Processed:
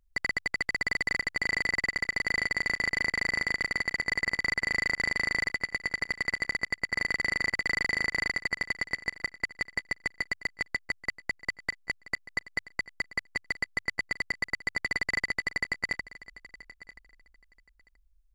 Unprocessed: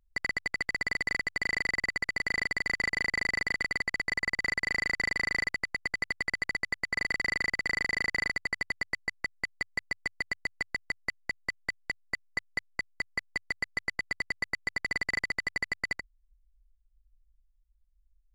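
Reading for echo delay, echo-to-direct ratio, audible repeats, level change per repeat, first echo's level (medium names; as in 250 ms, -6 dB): 979 ms, -18.0 dB, 2, -15.5 dB, -18.0 dB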